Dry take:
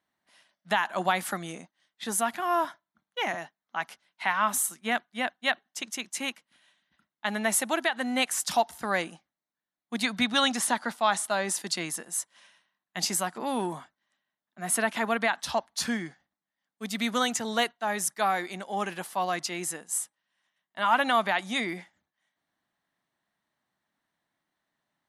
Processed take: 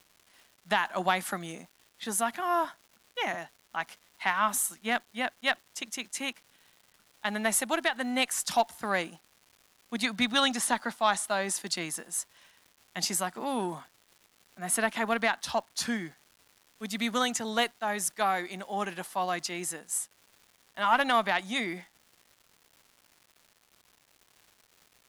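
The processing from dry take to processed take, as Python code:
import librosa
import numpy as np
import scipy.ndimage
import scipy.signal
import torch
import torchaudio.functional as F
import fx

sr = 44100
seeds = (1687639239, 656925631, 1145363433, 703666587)

y = fx.cheby_harmonics(x, sr, harmonics=(2, 3), levels_db=(-30, -24), full_scale_db=-11.0)
y = fx.dmg_crackle(y, sr, seeds[0], per_s=420.0, level_db=-47.0)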